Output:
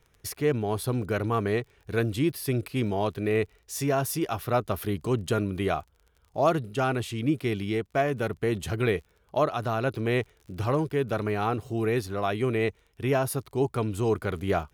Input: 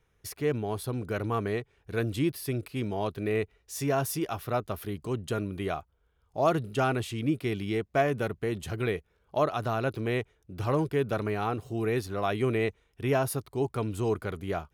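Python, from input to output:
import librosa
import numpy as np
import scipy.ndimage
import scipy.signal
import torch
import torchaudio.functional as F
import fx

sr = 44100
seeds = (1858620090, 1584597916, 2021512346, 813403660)

y = fx.dmg_crackle(x, sr, seeds[0], per_s=32.0, level_db=-49.0)
y = fx.rider(y, sr, range_db=4, speed_s=0.5)
y = F.gain(torch.from_numpy(y), 2.5).numpy()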